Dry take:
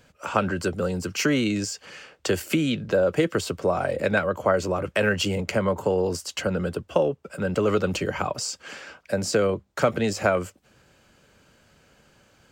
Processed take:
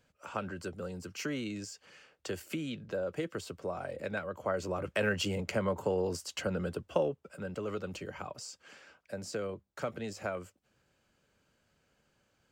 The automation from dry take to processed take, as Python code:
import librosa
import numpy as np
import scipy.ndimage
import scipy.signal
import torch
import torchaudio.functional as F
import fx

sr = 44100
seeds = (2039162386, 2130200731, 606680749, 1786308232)

y = fx.gain(x, sr, db=fx.line((4.28, -14.0), (4.87, -8.0), (7.04, -8.0), (7.58, -15.0)))